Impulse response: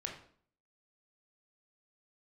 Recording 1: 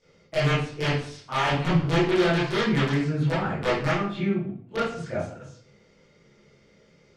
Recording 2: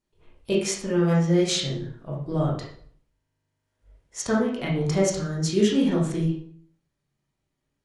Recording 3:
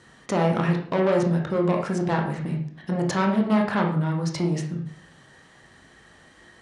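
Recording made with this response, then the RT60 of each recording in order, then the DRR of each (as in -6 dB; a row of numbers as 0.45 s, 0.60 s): 3; 0.55 s, 0.55 s, 0.55 s; -13.5 dB, -5.0 dB, 0.5 dB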